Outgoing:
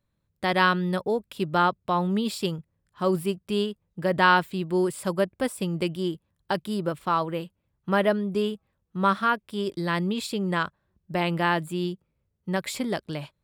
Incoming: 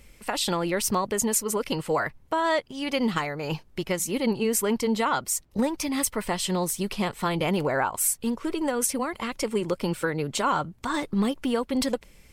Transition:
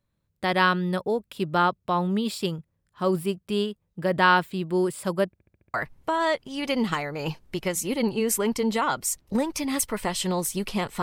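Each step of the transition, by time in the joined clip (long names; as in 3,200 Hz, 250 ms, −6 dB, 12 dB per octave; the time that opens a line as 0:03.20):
outgoing
0:05.32: stutter in place 0.07 s, 6 plays
0:05.74: continue with incoming from 0:01.98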